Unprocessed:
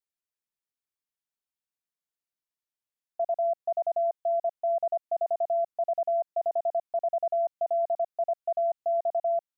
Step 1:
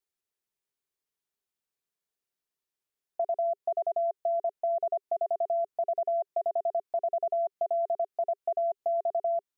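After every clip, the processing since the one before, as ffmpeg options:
ffmpeg -i in.wav -af "equalizer=frequency=400:width=5:gain=9,acompressor=threshold=-28dB:ratio=6,volume=2dB" out.wav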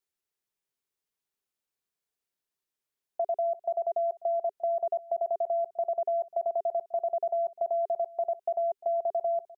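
ffmpeg -i in.wav -af "aecho=1:1:349:0.0944" out.wav

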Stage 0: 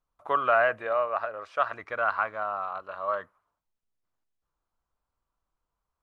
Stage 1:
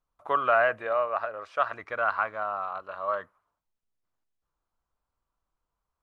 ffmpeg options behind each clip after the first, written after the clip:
ffmpeg -i in.wav -af anull out.wav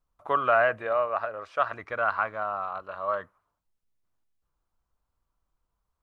ffmpeg -i in.wav -af "lowshelf=frequency=240:gain=6.5" out.wav

